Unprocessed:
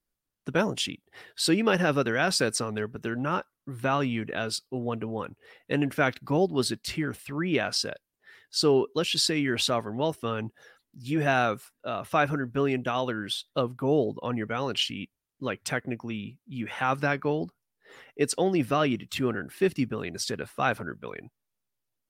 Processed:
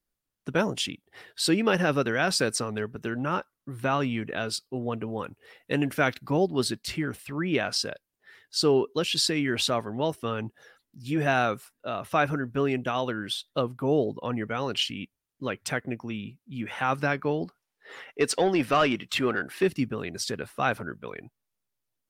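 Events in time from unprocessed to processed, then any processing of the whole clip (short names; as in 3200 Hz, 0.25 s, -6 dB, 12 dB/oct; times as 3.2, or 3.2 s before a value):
5.07–6.25 high shelf 4000 Hz +4.5 dB
17.45–19.63 overdrive pedal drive 13 dB, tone 4300 Hz, clips at -12 dBFS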